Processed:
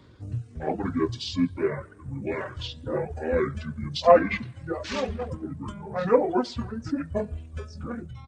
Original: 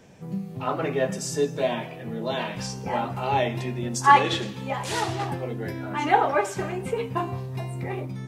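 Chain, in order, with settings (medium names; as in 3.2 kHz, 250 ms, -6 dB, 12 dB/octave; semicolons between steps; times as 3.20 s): reverb removal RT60 1.8 s; pitch shift -8.5 st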